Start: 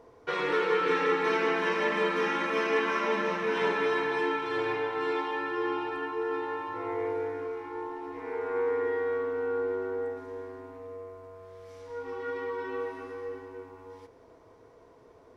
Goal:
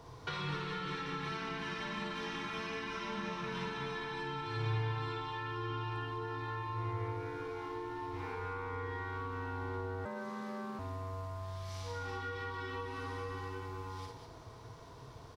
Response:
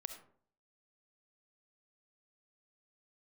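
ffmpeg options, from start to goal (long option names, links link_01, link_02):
-filter_complex "[0:a]equalizer=frequency=125:width_type=o:width=1:gain=9,equalizer=frequency=250:width_type=o:width=1:gain=-7,equalizer=frequency=500:width_type=o:width=1:gain=-12,equalizer=frequency=2000:width_type=o:width=1:gain=-6,equalizer=frequency=4000:width_type=o:width=1:gain=6,aecho=1:1:54|198:0.668|0.473,asettb=1/sr,asplit=3[link_01][link_02][link_03];[link_01]atrim=end=10.054[link_04];[link_02]atrim=start=10.05:end=10.79,asetpts=PTS-STARTPTS,afade=type=in:duration=0.004:curve=qsin,afade=type=out:start_time=0.736:duration=0.004:curve=qsin,afreqshift=120[link_05];[link_03]atrim=start=10.786[link_06];[link_04][link_05]acrossfade=duration=0.004:curve1=hsin:curve2=qsin[link_07];[link_07][link_06]acrossfade=duration=0.004:curve1=qsin:curve2=hsin,acrossover=split=150[link_08][link_09];[link_09]acompressor=threshold=-46dB:ratio=10[link_10];[link_08][link_10]amix=inputs=2:normalize=0,volume=7.5dB"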